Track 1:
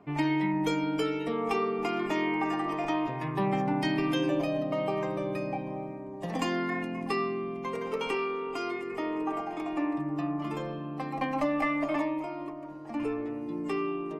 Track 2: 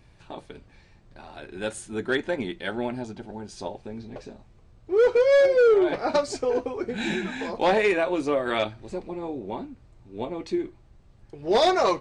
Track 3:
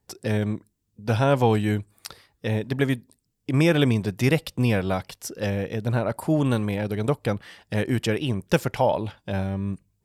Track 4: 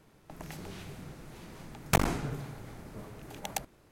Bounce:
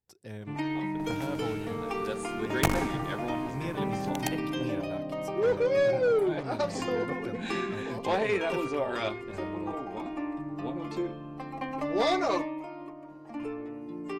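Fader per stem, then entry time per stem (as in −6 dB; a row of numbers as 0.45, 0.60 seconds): −4.5, −7.0, −17.5, −0.5 decibels; 0.40, 0.45, 0.00, 0.70 seconds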